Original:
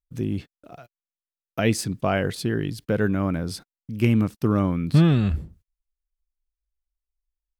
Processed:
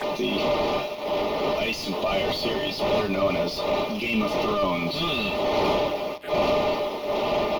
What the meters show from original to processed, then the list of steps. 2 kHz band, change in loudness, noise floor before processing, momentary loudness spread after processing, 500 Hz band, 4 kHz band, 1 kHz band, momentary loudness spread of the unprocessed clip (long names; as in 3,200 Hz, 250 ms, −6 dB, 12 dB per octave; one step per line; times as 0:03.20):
+4.0 dB, −1.5 dB, below −85 dBFS, 4 LU, +7.0 dB, +10.5 dB, +9.0 dB, 14 LU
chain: wind on the microphone 450 Hz −25 dBFS
meter weighting curve ITU-R 468
noise gate −48 dBFS, range −7 dB
comb filter 4.9 ms, depth 63%
in parallel at +2 dB: downward compressor 10 to 1, threshold −32 dBFS, peak gain reduction 19 dB
on the sum: transient designer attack −12 dB, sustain +1 dB
tuned comb filter 300 Hz, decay 0.19 s, harmonics all, mix 80%
bit reduction 9 bits
mid-hump overdrive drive 29 dB, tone 1,200 Hz, clips at −17.5 dBFS
phaser swept by the level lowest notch 170 Hz, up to 1,600 Hz, full sweep at −33 dBFS
on a send: repeating echo 110 ms, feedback 58%, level −20 dB
on the sum: level +8 dB
Opus 48 kbit/s 48,000 Hz